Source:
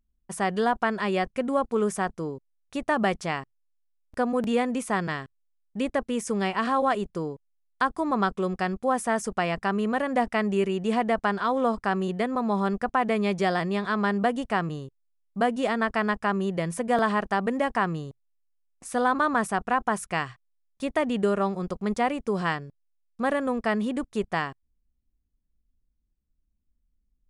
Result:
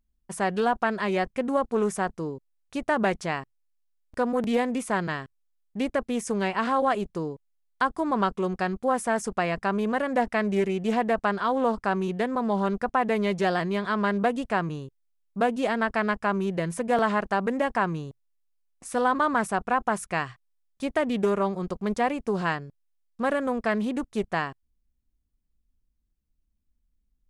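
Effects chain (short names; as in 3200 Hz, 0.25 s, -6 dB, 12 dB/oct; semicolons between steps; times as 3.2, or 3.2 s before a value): Doppler distortion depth 0.19 ms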